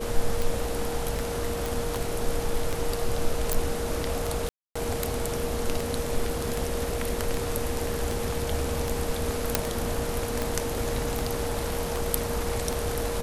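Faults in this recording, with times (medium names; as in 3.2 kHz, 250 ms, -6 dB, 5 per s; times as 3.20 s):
tick 78 rpm
whine 470 Hz -32 dBFS
1.66 s: pop
3.53 s: pop
4.49–4.75 s: dropout 265 ms
9.55 s: pop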